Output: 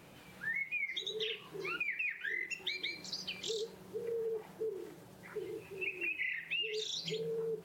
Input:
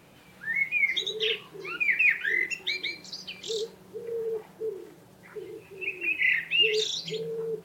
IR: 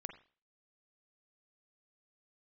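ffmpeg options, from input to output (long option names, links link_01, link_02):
-af "acompressor=threshold=-33dB:ratio=12,volume=-1.5dB"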